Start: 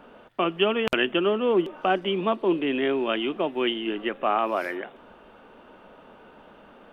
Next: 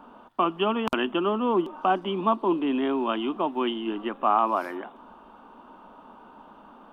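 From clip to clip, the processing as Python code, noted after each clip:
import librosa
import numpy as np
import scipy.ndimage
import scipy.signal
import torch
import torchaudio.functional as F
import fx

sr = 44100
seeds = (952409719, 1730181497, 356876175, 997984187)

y = fx.graphic_eq(x, sr, hz=(125, 250, 500, 1000, 2000), db=(-7, 7, -7, 12, -10))
y = y * 10.0 ** (-2.0 / 20.0)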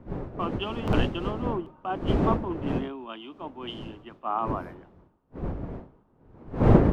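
y = fx.dmg_wind(x, sr, seeds[0], corner_hz=350.0, level_db=-23.0)
y = fx.band_widen(y, sr, depth_pct=100)
y = y * 10.0 ** (-8.0 / 20.0)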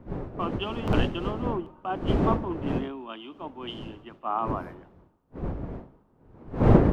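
y = fx.echo_feedback(x, sr, ms=70, feedback_pct=55, wet_db=-23.5)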